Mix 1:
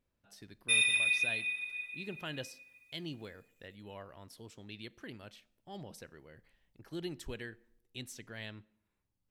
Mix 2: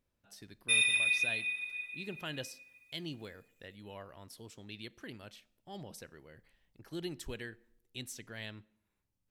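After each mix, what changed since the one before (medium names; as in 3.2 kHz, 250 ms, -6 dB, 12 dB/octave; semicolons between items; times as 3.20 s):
speech: add treble shelf 5 kHz +4.5 dB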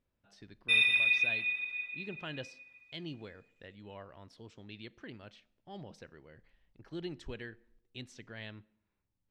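background +4.5 dB; master: add distance through air 150 m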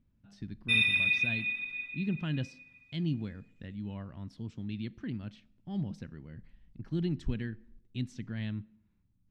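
master: add resonant low shelf 320 Hz +12.5 dB, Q 1.5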